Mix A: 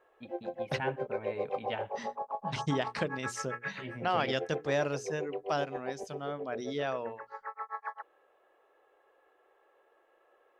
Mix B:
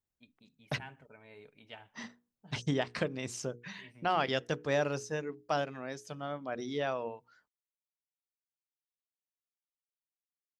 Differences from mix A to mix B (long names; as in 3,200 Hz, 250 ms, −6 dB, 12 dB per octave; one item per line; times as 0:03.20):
first voice: add first-order pre-emphasis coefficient 0.8
background: muted